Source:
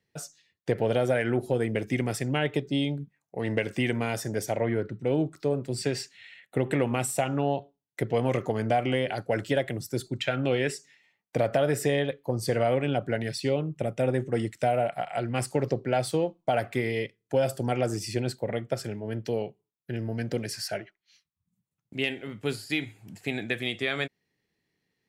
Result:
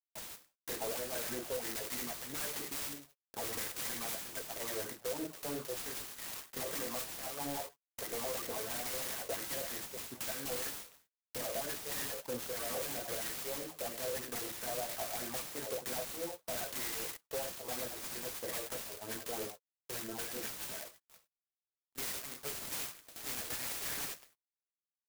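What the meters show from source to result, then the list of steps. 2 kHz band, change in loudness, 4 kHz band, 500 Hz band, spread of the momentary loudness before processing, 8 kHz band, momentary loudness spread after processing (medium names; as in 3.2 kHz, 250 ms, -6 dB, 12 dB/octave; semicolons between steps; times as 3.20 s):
-11.0 dB, -10.0 dB, -5.5 dB, -15.0 dB, 9 LU, +1.0 dB, 5 LU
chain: Butterworth band-stop 1.4 kHz, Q 6.3; pre-emphasis filter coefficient 0.97; on a send: feedback delay 106 ms, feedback 49%, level -22.5 dB; on the sum: crossover distortion -60 dBFS; gated-style reverb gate 120 ms falling, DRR 3 dB; phase shifter stages 8, 3.1 Hz, lowest notch 220–1000 Hz; in parallel at -11 dB: bit crusher 7-bit; on the sum: compression 4:1, threshold -52 dBFS, peak gain reduction 19.5 dB; overdrive pedal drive 31 dB, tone 3 kHz, clips at -34.5 dBFS; peaking EQ 210 Hz +3 dB 1.9 oct; sampling jitter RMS 0.13 ms; trim +5 dB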